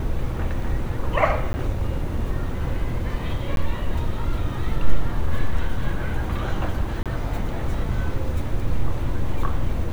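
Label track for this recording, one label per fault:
1.530000	1.540000	drop-out 10 ms
3.560000	3.570000	drop-out 12 ms
7.030000	7.060000	drop-out 27 ms

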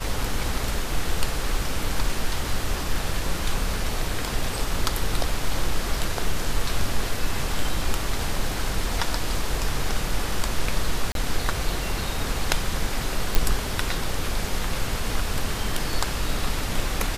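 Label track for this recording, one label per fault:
11.120000	11.150000	drop-out 32 ms
13.350000	13.350000	click

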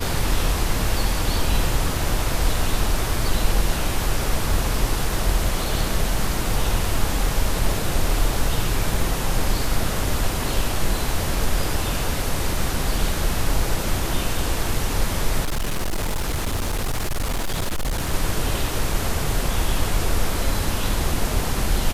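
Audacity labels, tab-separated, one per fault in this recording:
15.420000	18.130000	clipping −19.5 dBFS

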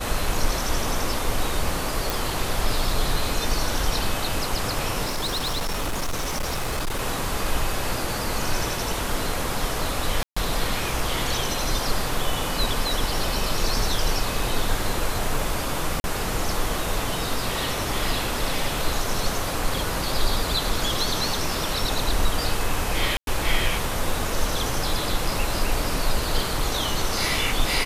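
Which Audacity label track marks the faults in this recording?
2.100000	2.100000	click
5.040000	7.010000	clipping −22 dBFS
10.230000	10.370000	drop-out 135 ms
16.000000	16.040000	drop-out 41 ms
23.170000	23.270000	drop-out 102 ms

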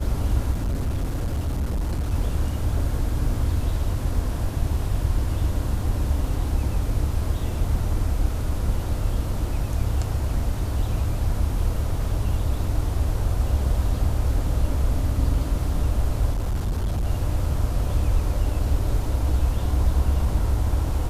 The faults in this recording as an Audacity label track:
0.510000	2.140000	clipping −21 dBFS
16.320000	17.070000	clipping −20.5 dBFS

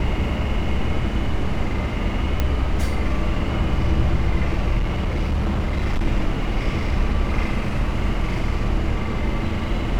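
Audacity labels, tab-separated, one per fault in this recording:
2.400000	2.400000	click −8 dBFS
4.780000	6.060000	clipping −17 dBFS

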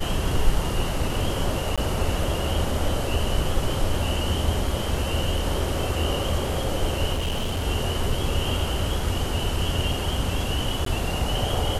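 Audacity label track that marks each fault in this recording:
1.760000	1.780000	drop-out 16 ms
7.130000	7.660000	clipping −22 dBFS
10.850000	10.860000	drop-out 13 ms

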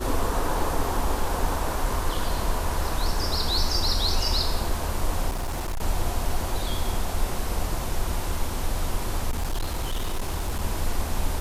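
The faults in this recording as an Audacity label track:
5.290000	5.820000	clipping −25 dBFS
9.300000	10.620000	clipping −22.5 dBFS

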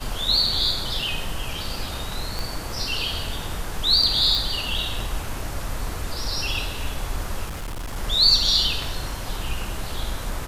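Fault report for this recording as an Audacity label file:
2.390000	2.390000	click
4.350000	4.350000	click
7.480000	7.970000	clipping −27.5 dBFS

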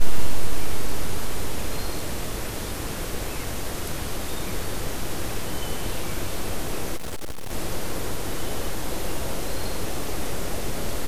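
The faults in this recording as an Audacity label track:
6.960000	7.530000	clipping −26 dBFS

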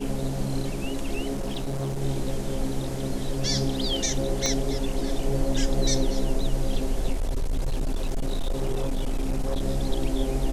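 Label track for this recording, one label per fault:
1.330000	2.020000	clipping −25 dBFS
4.460000	4.460000	click −11 dBFS
7.120000	9.640000	clipping −21.5 dBFS

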